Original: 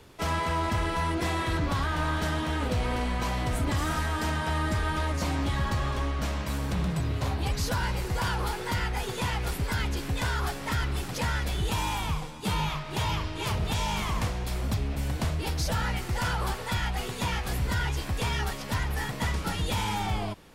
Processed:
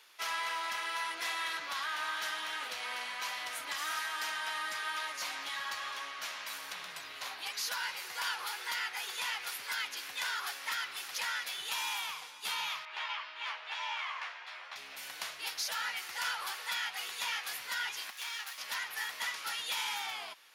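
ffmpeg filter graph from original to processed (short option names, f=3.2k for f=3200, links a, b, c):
-filter_complex "[0:a]asettb=1/sr,asplit=3[a][b][c];[a]atrim=end=12.854[d];[b]atrim=start=12.85:end=14.76,asetpts=PTS-STARTPTS,afade=t=in:d=0.004:c=qsin,afade=t=out:st=1.906:d=0.004:c=qsin,highpass=710,lowpass=2.4k,asplit=2[e][f];[f]adelay=13,volume=-3dB[g];[e][g]amix=inputs=2:normalize=0,atrim=end_sample=84231[h];[c]atrim=start=14.756[i];[d][h]acrossfade=d=0.004:c1=hsin:c2=qsin[j];[j][i]acrossfade=d=0.004:c1=qsin:c2=hsin,asettb=1/sr,asplit=3[k][l][m];[k]atrim=end=18.104[n];[l]atrim=start=18.1:end=18.58,asetpts=PTS-STARTPTS,afade=t=in:d=0.004:c=qsin,afade=t=out:st=0.476:d=0.004:c=qsin,highpass=750,aeval=exprs='max(val(0),0)':c=same[o];[m]atrim=start=18.576[p];[n][o]acrossfade=d=0.004:c1=hsin:c2=qsin[q];[q][p]acrossfade=d=0.004:c1=qsin:c2=hsin,highpass=1.5k,equalizer=f=8k:w=5.9:g=-9"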